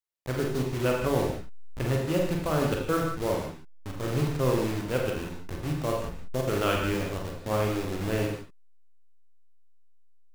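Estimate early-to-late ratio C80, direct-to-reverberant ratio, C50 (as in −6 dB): 5.0 dB, −0.5 dB, 2.0 dB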